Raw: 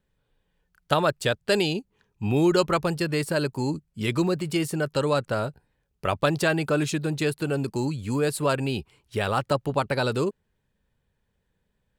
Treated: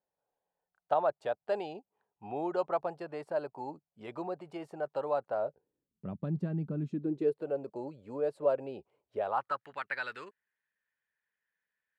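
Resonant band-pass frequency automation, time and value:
resonant band-pass, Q 3.7
0:05.36 730 Hz
0:06.06 190 Hz
0:06.82 190 Hz
0:07.46 580 Hz
0:09.19 580 Hz
0:09.64 1,800 Hz

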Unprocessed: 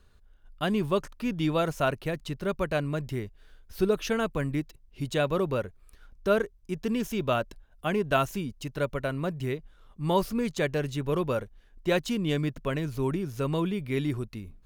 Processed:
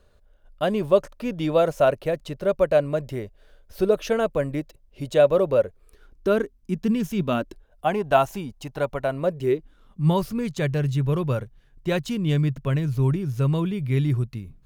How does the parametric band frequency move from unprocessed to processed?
parametric band +13 dB 0.67 octaves
0:05.59 570 Hz
0:07.13 150 Hz
0:07.89 780 Hz
0:09.04 780 Hz
0:10.20 130 Hz

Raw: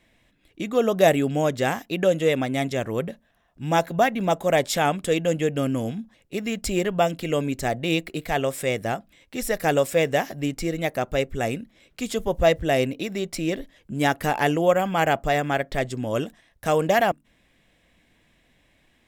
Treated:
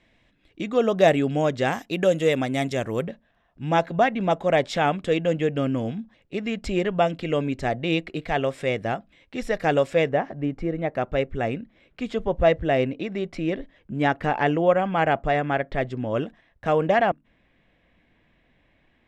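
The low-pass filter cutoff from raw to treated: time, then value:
5,100 Hz
from 0:01.73 9,600 Hz
from 0:03.07 3,700 Hz
from 0:10.09 1,500 Hz
from 0:10.95 2,600 Hz

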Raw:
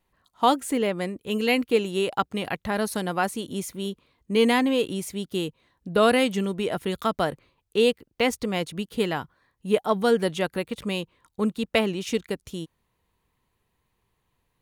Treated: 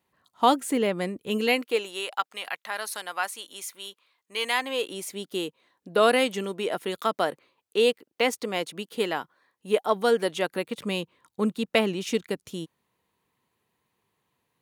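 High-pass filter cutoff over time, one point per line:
0:01.31 120 Hz
0:01.59 380 Hz
0:02.15 1,000 Hz
0:04.48 1,000 Hz
0:05.10 310 Hz
0:10.32 310 Hz
0:10.95 150 Hz

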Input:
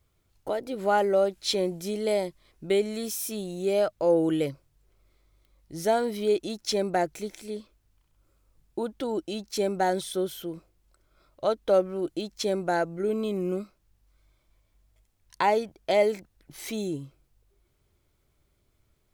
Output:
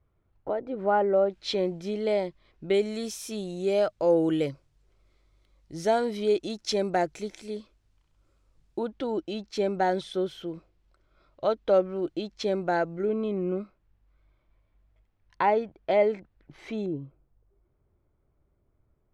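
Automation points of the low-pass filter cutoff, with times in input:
1,500 Hz
from 0:01.30 3,600 Hz
from 0:02.74 6,800 Hz
from 0:08.79 4,000 Hz
from 0:13.05 2,300 Hz
from 0:16.86 1,100 Hz

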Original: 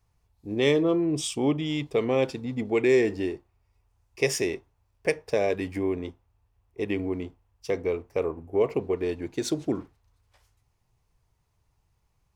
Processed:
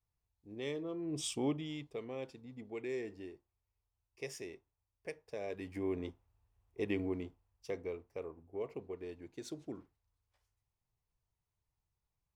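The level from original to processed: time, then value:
0:00.94 −18 dB
0:01.29 −7 dB
0:02.04 −19 dB
0:05.31 −19 dB
0:06.00 −7 dB
0:07.05 −7 dB
0:08.30 −17 dB

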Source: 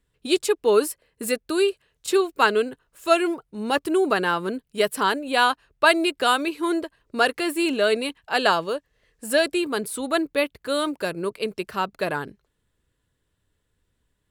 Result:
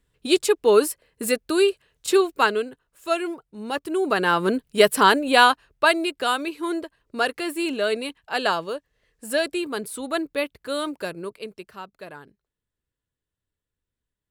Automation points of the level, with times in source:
0:02.28 +2 dB
0:02.68 −5 dB
0:03.88 −5 dB
0:04.48 +6 dB
0:05.29 +6 dB
0:06.03 −3 dB
0:11.03 −3 dB
0:11.91 −14 dB

